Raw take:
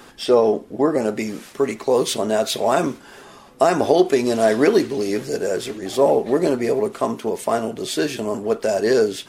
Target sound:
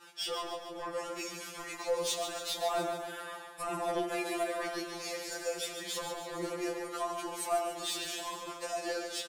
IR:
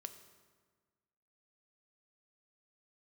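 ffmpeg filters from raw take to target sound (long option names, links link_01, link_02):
-filter_complex "[0:a]highpass=frequency=910:poles=1,agate=range=-33dB:threshold=-43dB:ratio=3:detection=peak,asettb=1/sr,asplit=3[link_01][link_02][link_03];[link_01]atrim=end=2.594[link_04];[link_02]atrim=start=2.59:end=4.63,asetpts=PTS-STARTPTS,afade=type=in:duration=0.004:curve=qsin,afade=type=out:start_time=2.036:duration=0.004:curve=qsin,aecho=1:1:5.9:0.78,atrim=end_sample=89964[link_05];[link_03]atrim=start=4.626[link_06];[link_04][link_05]acrossfade=duration=0.004:curve1=hsin:curve2=qsin[link_07];[link_07][link_06]acrossfade=duration=0.004:curve1=qsin:curve2=hsin,acompressor=threshold=-27dB:ratio=4,asoftclip=type=tanh:threshold=-26.5dB,flanger=delay=0.7:depth=1.8:regen=-44:speed=0.83:shape=sinusoidal,aecho=1:1:143|286|429|572|715|858|1001:0.398|0.223|0.125|0.0699|0.0392|0.0219|0.0123[link_08];[1:a]atrim=start_sample=2205[link_09];[link_08][link_09]afir=irnorm=-1:irlink=0,afftfilt=real='re*2.83*eq(mod(b,8),0)':imag='im*2.83*eq(mod(b,8),0)':win_size=2048:overlap=0.75,volume=8.5dB"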